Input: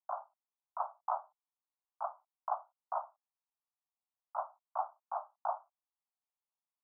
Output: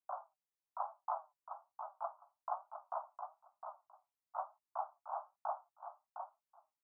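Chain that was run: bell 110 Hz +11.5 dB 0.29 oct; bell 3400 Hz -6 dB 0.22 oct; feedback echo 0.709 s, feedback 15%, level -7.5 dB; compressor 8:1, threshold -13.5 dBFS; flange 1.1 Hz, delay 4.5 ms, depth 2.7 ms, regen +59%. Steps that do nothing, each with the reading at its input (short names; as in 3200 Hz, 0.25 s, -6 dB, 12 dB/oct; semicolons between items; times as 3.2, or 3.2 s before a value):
bell 110 Hz: input band starts at 510 Hz; bell 3400 Hz: input band ends at 1500 Hz; compressor, threshold -13.5 dBFS: input peak -20.5 dBFS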